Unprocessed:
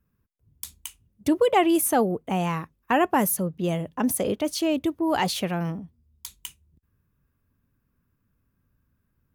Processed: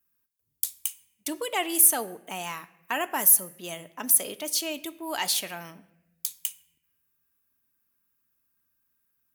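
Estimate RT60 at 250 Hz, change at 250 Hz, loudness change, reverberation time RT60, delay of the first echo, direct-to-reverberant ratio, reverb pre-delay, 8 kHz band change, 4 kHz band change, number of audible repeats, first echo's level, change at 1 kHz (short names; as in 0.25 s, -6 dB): 1.3 s, -14.0 dB, 0.0 dB, 0.90 s, none, 10.5 dB, 3 ms, +8.0 dB, +1.5 dB, none, none, -8.0 dB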